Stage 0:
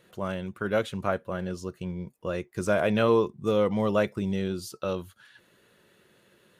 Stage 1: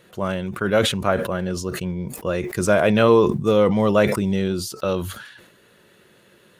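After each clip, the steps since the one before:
level that may fall only so fast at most 62 dB per second
level +7 dB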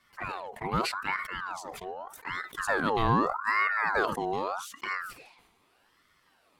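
flanger swept by the level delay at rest 10.4 ms, full sweep at −17.5 dBFS
ring modulator whose carrier an LFO sweeps 1,100 Hz, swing 50%, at 0.82 Hz
level −6.5 dB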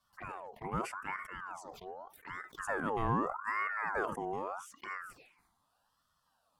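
phaser swept by the level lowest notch 340 Hz, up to 4,100 Hz, full sweep at −33.5 dBFS
level −6.5 dB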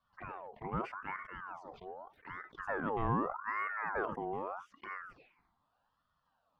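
high-frequency loss of the air 280 metres

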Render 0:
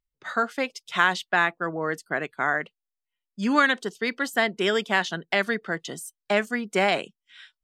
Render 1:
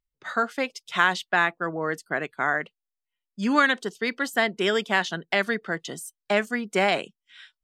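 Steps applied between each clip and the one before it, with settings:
no processing that can be heard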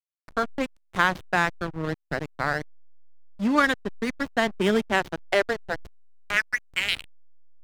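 high-pass filter sweep 130 Hz → 3,400 Hz, 0:04.35–0:07.00
slack as between gear wheels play −20 dBFS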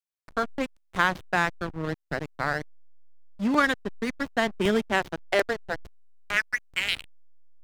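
regular buffer underruns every 0.37 s, samples 128, repeat, from 0:00.95
level −1.5 dB

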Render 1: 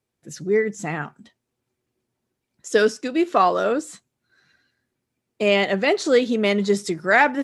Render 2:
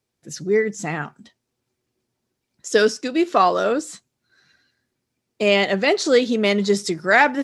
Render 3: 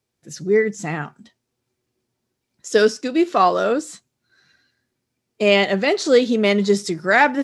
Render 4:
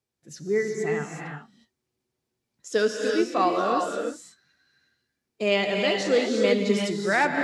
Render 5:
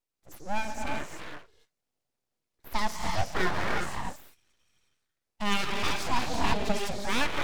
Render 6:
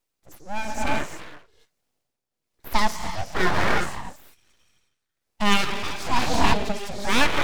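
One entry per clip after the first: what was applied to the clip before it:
parametric band 5,100 Hz +5 dB 0.99 octaves; level +1 dB
harmonic and percussive parts rebalanced percussive −4 dB; level +2 dB
reverb whose tail is shaped and stops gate 390 ms rising, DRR 1 dB; level −8 dB
full-wave rectification; level −2.5 dB
amplitude tremolo 1.1 Hz, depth 69%; level +8.5 dB

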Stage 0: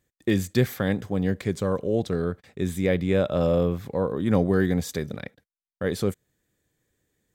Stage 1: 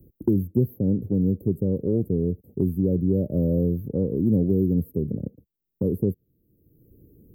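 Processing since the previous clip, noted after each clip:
inverse Chebyshev band-stop filter 1,400–5,400 Hz, stop band 70 dB
multiband upward and downward compressor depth 70%
level +3 dB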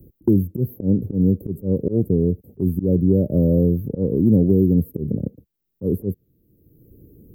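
volume swells 101 ms
level +5.5 dB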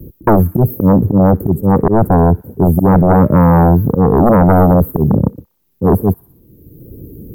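sine wavefolder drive 11 dB, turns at −4.5 dBFS
tape wow and flutter 54 cents
delay with a high-pass on its return 61 ms, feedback 57%, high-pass 3,100 Hz, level −10 dB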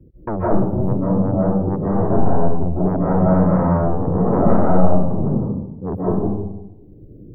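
high-frequency loss of the air 290 metres
comb and all-pass reverb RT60 0.95 s, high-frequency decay 0.3×, pre-delay 115 ms, DRR −7 dB
level −14.5 dB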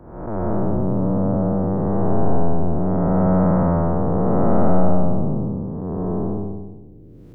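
spectrum smeared in time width 390 ms

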